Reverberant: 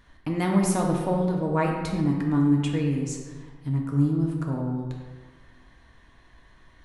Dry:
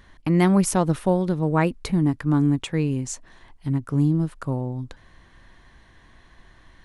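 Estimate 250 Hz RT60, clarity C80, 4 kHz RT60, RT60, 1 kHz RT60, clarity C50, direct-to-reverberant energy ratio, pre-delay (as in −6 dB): 1.6 s, 4.5 dB, 0.90 s, 1.5 s, 1.5 s, 2.5 dB, −0.5 dB, 3 ms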